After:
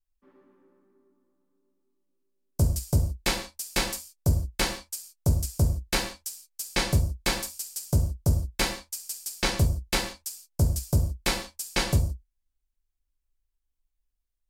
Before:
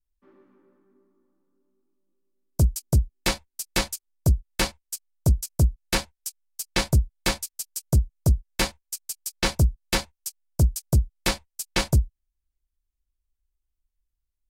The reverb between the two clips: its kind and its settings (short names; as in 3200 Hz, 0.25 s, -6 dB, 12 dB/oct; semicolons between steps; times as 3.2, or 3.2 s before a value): non-linear reverb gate 0.19 s falling, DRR 2.5 dB; gain -3 dB